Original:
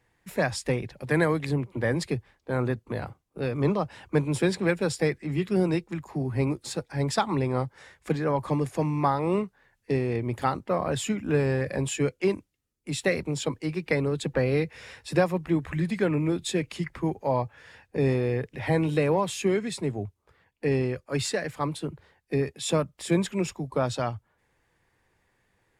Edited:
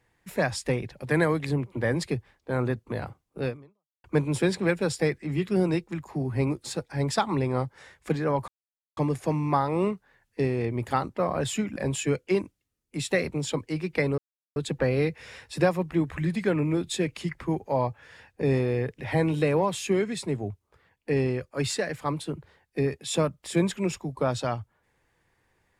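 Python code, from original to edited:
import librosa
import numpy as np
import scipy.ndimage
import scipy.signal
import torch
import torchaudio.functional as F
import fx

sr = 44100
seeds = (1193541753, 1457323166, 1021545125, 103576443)

y = fx.edit(x, sr, fx.fade_out_span(start_s=3.49, length_s=0.55, curve='exp'),
    fx.insert_silence(at_s=8.48, length_s=0.49),
    fx.cut(start_s=11.27, length_s=0.42),
    fx.insert_silence(at_s=14.11, length_s=0.38), tone=tone)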